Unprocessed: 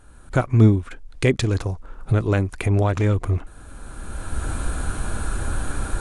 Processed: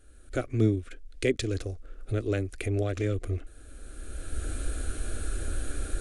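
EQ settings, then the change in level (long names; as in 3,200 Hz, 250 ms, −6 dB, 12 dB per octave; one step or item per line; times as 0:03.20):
phaser with its sweep stopped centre 390 Hz, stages 4
−5.0 dB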